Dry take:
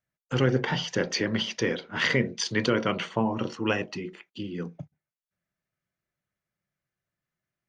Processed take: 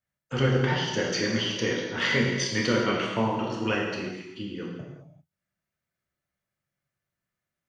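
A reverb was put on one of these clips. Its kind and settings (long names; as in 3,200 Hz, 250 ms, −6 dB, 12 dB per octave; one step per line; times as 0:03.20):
reverb whose tail is shaped and stops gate 420 ms falling, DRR −3 dB
level −3.5 dB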